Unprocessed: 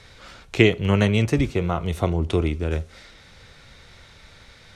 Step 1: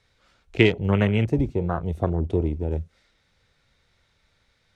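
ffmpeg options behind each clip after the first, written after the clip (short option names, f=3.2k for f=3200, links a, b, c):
-af "afwtdn=0.0398,volume=-1.5dB"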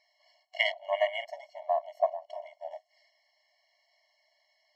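-af "superequalizer=8b=3.16:12b=2:14b=2.82:16b=0.316,afftfilt=real='re*eq(mod(floor(b*sr/1024/560),2),1)':imag='im*eq(mod(floor(b*sr/1024/560),2),1)':win_size=1024:overlap=0.75,volume=-4dB"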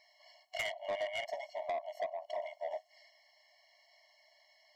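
-af "acompressor=threshold=-33dB:ratio=10,asoftclip=type=tanh:threshold=-36dB,volume=5dB"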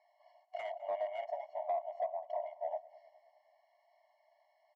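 -af "bandpass=f=770:t=q:w=2.5:csg=0,aecho=1:1:206|412|618|824:0.0891|0.049|0.027|0.0148,volume=3.5dB"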